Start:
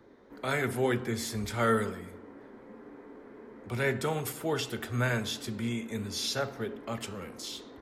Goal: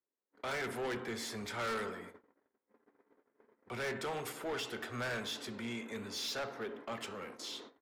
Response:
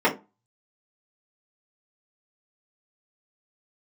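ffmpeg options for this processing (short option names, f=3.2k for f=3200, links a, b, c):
-af "highpass=f=600:p=1,agate=range=-38dB:threshold=-50dB:ratio=16:detection=peak,lowpass=f=3.1k:p=1,asoftclip=type=tanh:threshold=-36dB,volume=2dB"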